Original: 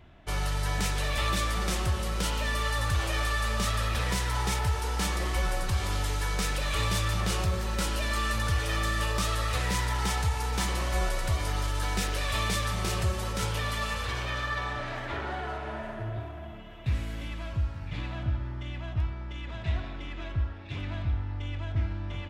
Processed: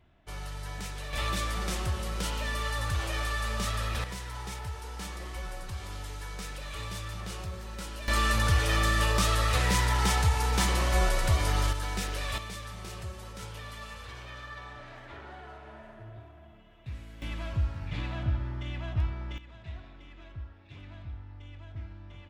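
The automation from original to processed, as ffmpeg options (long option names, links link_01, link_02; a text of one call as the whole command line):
ffmpeg -i in.wav -af "asetnsamples=nb_out_samples=441:pad=0,asendcmd='1.13 volume volume -3dB;4.04 volume volume -10dB;8.08 volume volume 3dB;11.73 volume volume -3.5dB;12.38 volume volume -11.5dB;17.22 volume volume 0.5dB;19.38 volume volume -12dB',volume=-9.5dB" out.wav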